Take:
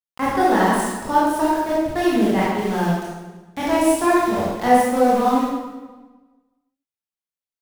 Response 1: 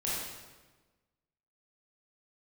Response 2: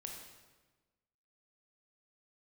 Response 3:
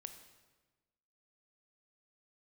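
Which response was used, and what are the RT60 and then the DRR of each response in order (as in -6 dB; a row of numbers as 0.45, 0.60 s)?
1; 1.3, 1.3, 1.3 s; -7.5, 0.5, 7.5 dB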